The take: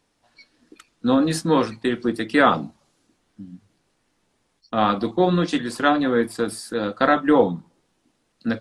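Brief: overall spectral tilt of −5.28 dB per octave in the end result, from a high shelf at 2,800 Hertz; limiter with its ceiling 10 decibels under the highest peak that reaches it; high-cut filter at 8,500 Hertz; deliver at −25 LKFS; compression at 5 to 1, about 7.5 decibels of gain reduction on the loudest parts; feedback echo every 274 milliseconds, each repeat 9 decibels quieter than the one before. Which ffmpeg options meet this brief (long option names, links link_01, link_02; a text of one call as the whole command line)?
ffmpeg -i in.wav -af "lowpass=8500,highshelf=frequency=2800:gain=-3.5,acompressor=threshold=-19dB:ratio=5,alimiter=limit=-17.5dB:level=0:latency=1,aecho=1:1:274|548|822|1096:0.355|0.124|0.0435|0.0152,volume=3.5dB" out.wav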